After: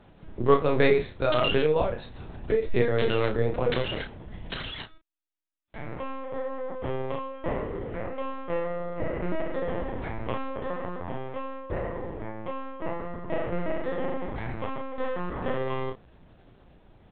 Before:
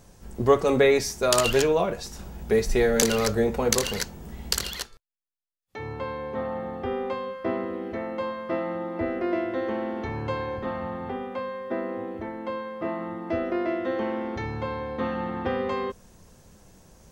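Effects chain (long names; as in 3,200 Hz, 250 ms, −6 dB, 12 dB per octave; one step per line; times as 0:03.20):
linear-prediction vocoder at 8 kHz pitch kept
double-tracking delay 33 ms −6.5 dB
level −2 dB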